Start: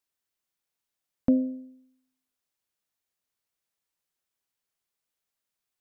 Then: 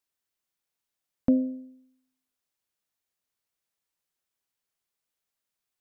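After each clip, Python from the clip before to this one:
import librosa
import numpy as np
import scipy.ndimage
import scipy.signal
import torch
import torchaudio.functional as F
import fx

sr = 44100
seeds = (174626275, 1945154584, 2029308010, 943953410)

y = x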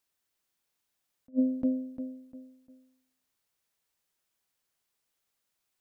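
y = fx.echo_feedback(x, sr, ms=350, feedback_pct=33, wet_db=-9)
y = fx.attack_slew(y, sr, db_per_s=500.0)
y = F.gain(torch.from_numpy(y), 4.0).numpy()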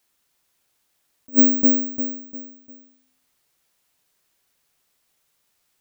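y = (np.kron(x[::2], np.eye(2)[0]) * 2)[:len(x)]
y = F.gain(torch.from_numpy(y), 8.5).numpy()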